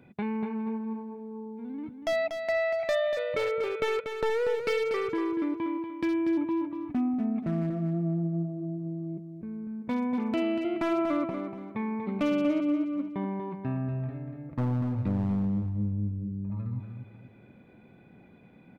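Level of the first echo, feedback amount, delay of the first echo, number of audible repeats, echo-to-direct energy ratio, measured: -7.5 dB, 33%, 0.239 s, 3, -7.0 dB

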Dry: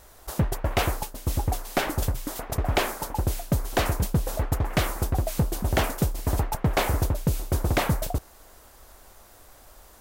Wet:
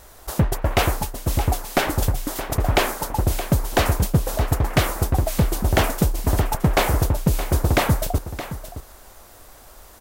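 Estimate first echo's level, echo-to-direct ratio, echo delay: -12.5 dB, -12.5 dB, 0.619 s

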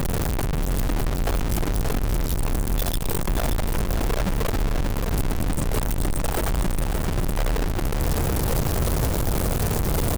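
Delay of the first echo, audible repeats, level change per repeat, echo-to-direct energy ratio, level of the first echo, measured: 0.577 s, 2, -11.5 dB, -6.0 dB, -6.5 dB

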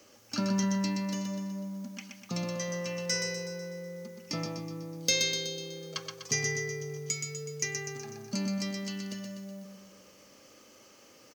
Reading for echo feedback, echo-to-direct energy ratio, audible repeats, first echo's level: 55%, -3.5 dB, 6, -5.0 dB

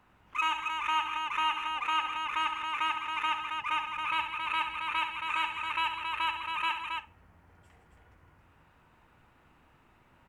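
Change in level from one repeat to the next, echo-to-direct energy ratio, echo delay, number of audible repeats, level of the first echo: no steady repeat, -2.5 dB, 69 ms, 3, -8.5 dB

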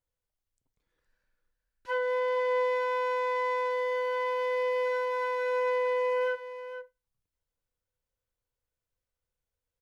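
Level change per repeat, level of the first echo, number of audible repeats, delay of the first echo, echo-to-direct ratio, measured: no steady repeat, -11.0 dB, 1, 0.465 s, -11.0 dB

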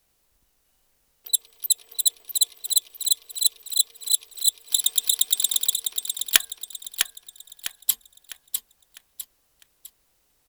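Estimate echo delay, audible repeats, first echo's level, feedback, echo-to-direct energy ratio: 0.653 s, 4, -6.0 dB, 39%, -5.5 dB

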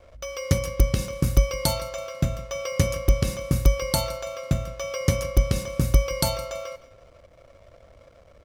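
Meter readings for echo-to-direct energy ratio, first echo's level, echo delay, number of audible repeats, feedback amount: -18.5 dB, -19.0 dB, 0.165 s, 2, 34%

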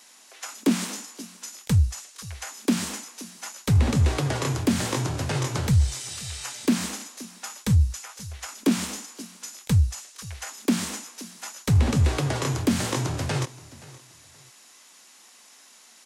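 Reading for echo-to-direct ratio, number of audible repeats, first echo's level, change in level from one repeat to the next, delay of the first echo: -19.5 dB, 2, -20.0 dB, -10.5 dB, 0.524 s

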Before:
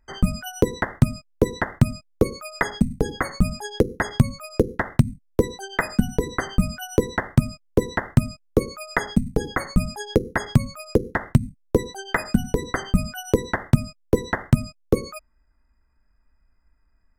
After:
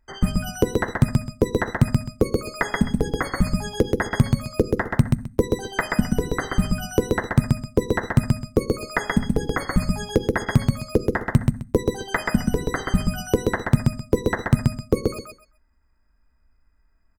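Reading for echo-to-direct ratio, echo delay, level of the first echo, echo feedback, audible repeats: -3.0 dB, 0.13 s, -3.0 dB, 20%, 3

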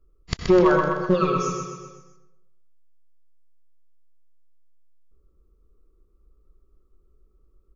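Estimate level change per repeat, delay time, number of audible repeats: -5.5 dB, 0.127 s, 5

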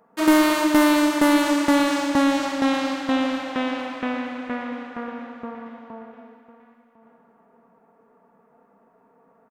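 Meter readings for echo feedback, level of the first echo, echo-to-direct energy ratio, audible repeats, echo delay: 24%, -17.0 dB, -17.0 dB, 2, 1.052 s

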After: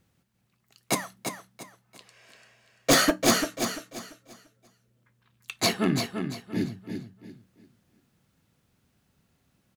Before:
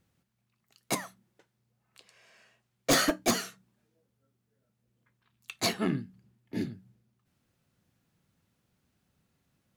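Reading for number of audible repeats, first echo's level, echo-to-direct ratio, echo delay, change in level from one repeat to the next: 3, -7.0 dB, -6.5 dB, 0.342 s, -11.0 dB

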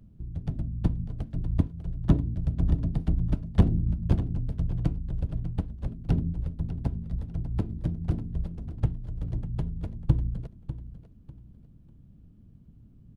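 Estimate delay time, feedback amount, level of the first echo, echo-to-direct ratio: 0.597 s, 28%, -13.0 dB, -12.5 dB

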